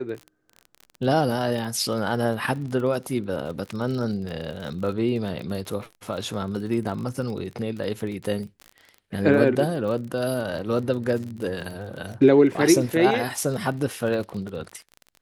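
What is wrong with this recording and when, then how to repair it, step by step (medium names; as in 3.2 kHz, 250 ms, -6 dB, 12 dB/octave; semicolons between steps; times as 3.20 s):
crackle 33 per s -31 dBFS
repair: de-click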